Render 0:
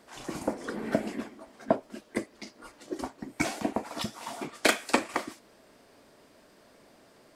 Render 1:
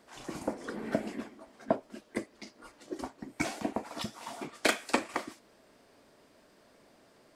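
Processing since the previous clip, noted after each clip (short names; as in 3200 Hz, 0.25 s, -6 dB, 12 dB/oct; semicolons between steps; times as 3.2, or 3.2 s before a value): bell 14000 Hz -2.5 dB 0.85 oct; gain -3.5 dB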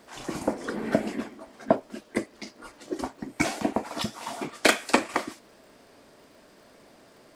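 crackle 110/s -58 dBFS; gain +7 dB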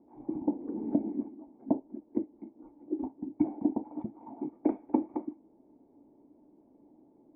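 median filter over 9 samples; vocal tract filter u; gain +3.5 dB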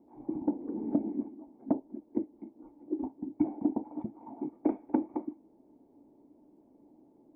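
soft clip -12.5 dBFS, distortion -24 dB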